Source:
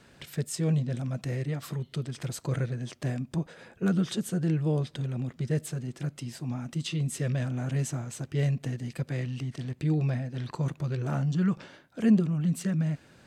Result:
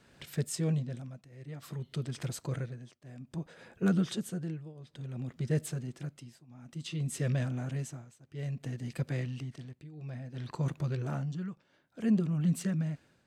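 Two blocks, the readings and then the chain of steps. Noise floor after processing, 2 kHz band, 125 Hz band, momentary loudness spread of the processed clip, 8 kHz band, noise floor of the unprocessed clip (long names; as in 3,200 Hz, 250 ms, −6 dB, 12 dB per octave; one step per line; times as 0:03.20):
−69 dBFS, −4.5 dB, −5.5 dB, 17 LU, −4.0 dB, −58 dBFS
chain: shaped tremolo triangle 0.58 Hz, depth 95%
level −1 dB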